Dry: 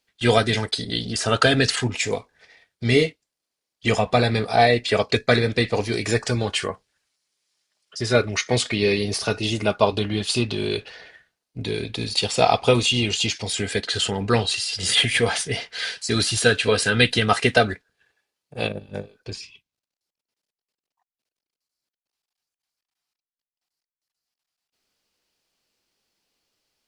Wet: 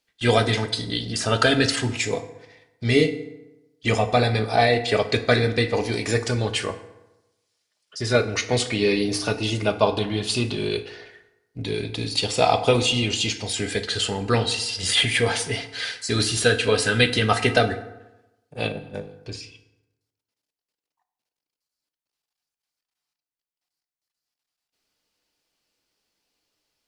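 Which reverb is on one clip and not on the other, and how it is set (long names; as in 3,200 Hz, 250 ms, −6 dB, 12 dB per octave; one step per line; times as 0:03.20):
feedback delay network reverb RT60 1 s, low-frequency decay 1×, high-frequency decay 0.6×, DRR 8.5 dB
level −1.5 dB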